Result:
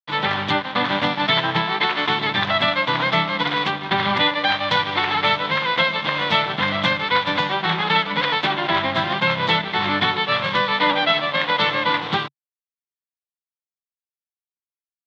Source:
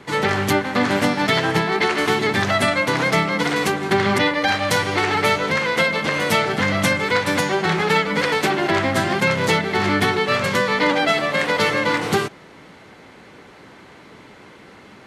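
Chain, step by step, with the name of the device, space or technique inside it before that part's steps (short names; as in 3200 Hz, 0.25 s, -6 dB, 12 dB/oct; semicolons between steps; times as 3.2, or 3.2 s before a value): blown loudspeaker (crossover distortion -31 dBFS; speaker cabinet 130–4000 Hz, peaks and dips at 140 Hz +3 dB, 240 Hz -6 dB, 410 Hz -10 dB, 1000 Hz +6 dB, 3500 Hz +10 dB)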